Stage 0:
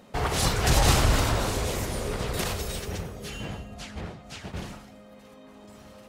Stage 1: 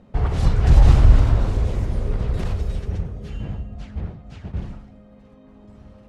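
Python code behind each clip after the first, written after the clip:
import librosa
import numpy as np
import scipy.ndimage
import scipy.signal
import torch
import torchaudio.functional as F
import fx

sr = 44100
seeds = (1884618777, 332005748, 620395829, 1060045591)

y = scipy.signal.sosfilt(scipy.signal.butter(2, 12000.0, 'lowpass', fs=sr, output='sos'), x)
y = fx.riaa(y, sr, side='playback')
y = y * 10.0 ** (-4.5 / 20.0)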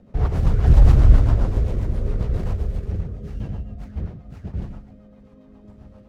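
y = scipy.signal.medfilt(x, 15)
y = fx.rotary(y, sr, hz=7.5)
y = y * 10.0 ** (1.5 / 20.0)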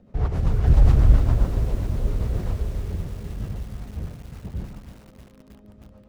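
y = fx.echo_crushed(x, sr, ms=316, feedback_pct=80, bits=6, wet_db=-13)
y = y * 10.0 ** (-3.0 / 20.0)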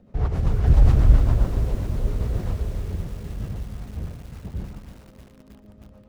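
y = x + 10.0 ** (-14.5 / 20.0) * np.pad(x, (int(119 * sr / 1000.0), 0))[:len(x)]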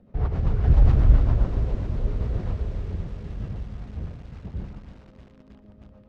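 y = fx.air_absorb(x, sr, metres=140.0)
y = y * 10.0 ** (-1.5 / 20.0)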